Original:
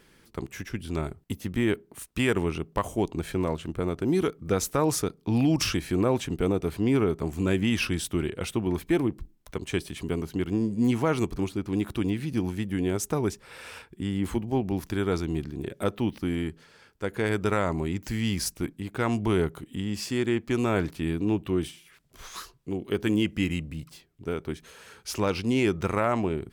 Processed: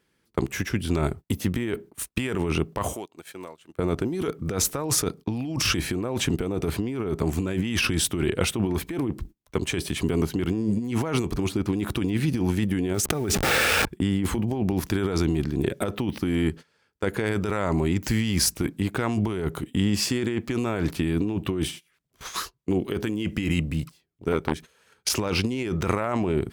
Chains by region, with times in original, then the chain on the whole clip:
2.93–3.79 HPF 710 Hz 6 dB/oct + high shelf 8400 Hz +6.5 dB + compressor 5:1, threshold -41 dBFS
12.94–13.87 level-crossing sampler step -44.5 dBFS + Butterworth band-stop 990 Hz, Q 6 + fast leveller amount 70%
24.32–25.09 transient shaper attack +11 dB, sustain -2 dB + core saturation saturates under 1100 Hz
whole clip: gate -43 dBFS, range -21 dB; HPF 45 Hz; negative-ratio compressor -30 dBFS, ratio -1; gain +5.5 dB

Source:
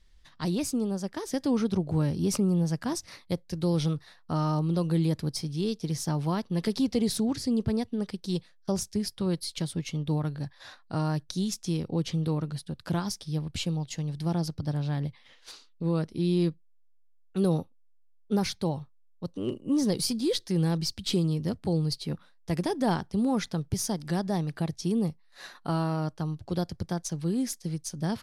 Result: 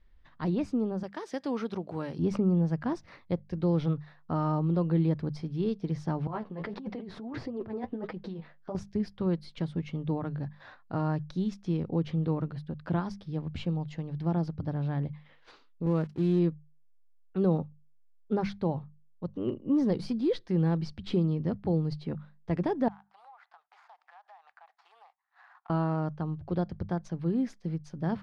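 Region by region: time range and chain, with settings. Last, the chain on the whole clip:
1.03–2.19 HPF 530 Hz 6 dB/oct + high shelf 3600 Hz +11.5 dB
6.27–8.75 flange 1.6 Hz, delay 5.2 ms, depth 8.4 ms, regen +25% + negative-ratio compressor -39 dBFS + overdrive pedal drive 18 dB, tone 1100 Hz, clips at -15 dBFS
15.86–16.39 switching spikes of -26.5 dBFS + gate -36 dBFS, range -30 dB
22.88–25.7 median filter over 15 samples + Chebyshev high-pass 750 Hz, order 5 + compressor 8:1, threshold -50 dBFS
whole clip: LPF 1900 Hz 12 dB/oct; notches 50/100/150/200 Hz

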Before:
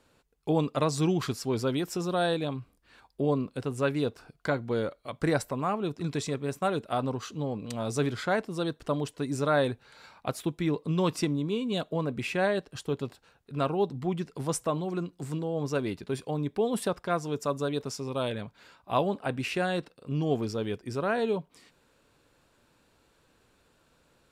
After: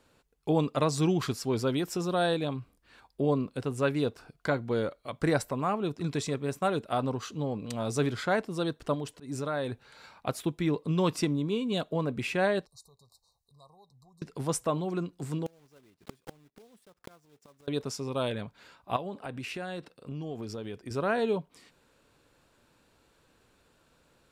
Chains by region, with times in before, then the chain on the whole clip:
8.94–9.72 compressor 2:1, threshold -33 dBFS + auto swell 0.129 s
12.66–14.22 compressor 2:1, threshold -48 dBFS + brick-wall FIR band-stop 1200–3700 Hz + passive tone stack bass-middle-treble 10-0-10
15.46–17.68 block floating point 3-bit + flipped gate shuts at -27 dBFS, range -30 dB
18.96–20.91 HPF 49 Hz + compressor 4:1, threshold -35 dBFS
whole clip: dry

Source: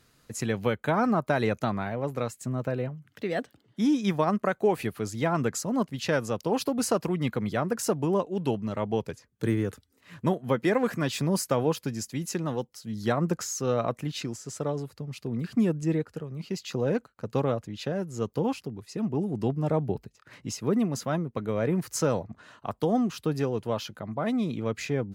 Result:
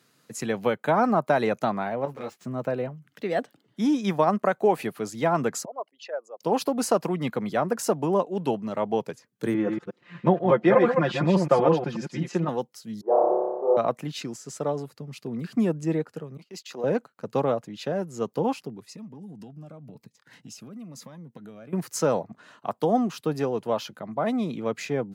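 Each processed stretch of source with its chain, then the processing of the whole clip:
2.05–2.45 median filter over 5 samples + transient shaper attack -10 dB, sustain +1 dB + ensemble effect
5.65–6.41 formant sharpening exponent 2 + ladder high-pass 610 Hz, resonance 50%
9.54–12.49 reverse delay 0.121 s, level -4 dB + LPF 3100 Hz + comb 5.7 ms, depth 77%
13.01–13.77 elliptic band-pass 370–950 Hz, stop band 70 dB + flutter echo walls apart 5.1 m, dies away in 1.4 s
16.37–16.84 HPF 290 Hz + gate -46 dBFS, range -21 dB + transient shaper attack -10 dB, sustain -1 dB
18.9–21.73 bell 380 Hz -10 dB 0.36 oct + compressor 12:1, threshold -37 dBFS + cascading phaser falling 1 Hz
whole clip: HPF 140 Hz 24 dB/oct; dynamic EQ 750 Hz, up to +6 dB, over -40 dBFS, Q 1.1

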